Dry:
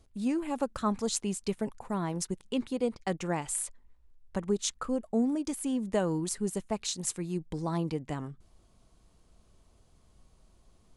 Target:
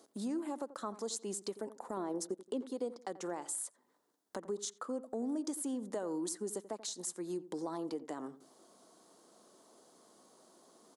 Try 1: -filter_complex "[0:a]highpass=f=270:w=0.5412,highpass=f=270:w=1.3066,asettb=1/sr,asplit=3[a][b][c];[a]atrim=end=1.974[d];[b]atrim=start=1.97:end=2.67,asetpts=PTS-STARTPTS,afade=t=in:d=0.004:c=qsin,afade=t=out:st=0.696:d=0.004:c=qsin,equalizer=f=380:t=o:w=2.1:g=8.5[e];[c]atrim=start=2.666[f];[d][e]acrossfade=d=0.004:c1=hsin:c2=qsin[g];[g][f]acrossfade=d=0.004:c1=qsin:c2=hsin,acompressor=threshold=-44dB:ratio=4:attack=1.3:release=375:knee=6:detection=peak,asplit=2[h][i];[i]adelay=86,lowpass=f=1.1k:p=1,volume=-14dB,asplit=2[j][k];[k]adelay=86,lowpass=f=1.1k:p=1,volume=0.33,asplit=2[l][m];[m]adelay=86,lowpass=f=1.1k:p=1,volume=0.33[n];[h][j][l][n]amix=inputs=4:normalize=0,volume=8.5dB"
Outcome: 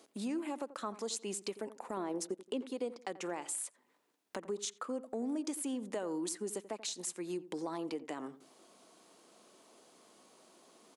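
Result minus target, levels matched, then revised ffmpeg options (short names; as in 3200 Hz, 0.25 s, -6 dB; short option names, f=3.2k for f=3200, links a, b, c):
2000 Hz band +5.0 dB
-filter_complex "[0:a]highpass=f=270:w=0.5412,highpass=f=270:w=1.3066,asettb=1/sr,asplit=3[a][b][c];[a]atrim=end=1.974[d];[b]atrim=start=1.97:end=2.67,asetpts=PTS-STARTPTS,afade=t=in:d=0.004:c=qsin,afade=t=out:st=0.696:d=0.004:c=qsin,equalizer=f=380:t=o:w=2.1:g=8.5[e];[c]atrim=start=2.666[f];[d][e]acrossfade=d=0.004:c1=hsin:c2=qsin[g];[g][f]acrossfade=d=0.004:c1=qsin:c2=hsin,acompressor=threshold=-44dB:ratio=4:attack=1.3:release=375:knee=6:detection=peak,equalizer=f=2.5k:t=o:w=0.7:g=-13,asplit=2[h][i];[i]adelay=86,lowpass=f=1.1k:p=1,volume=-14dB,asplit=2[j][k];[k]adelay=86,lowpass=f=1.1k:p=1,volume=0.33,asplit=2[l][m];[m]adelay=86,lowpass=f=1.1k:p=1,volume=0.33[n];[h][j][l][n]amix=inputs=4:normalize=0,volume=8.5dB"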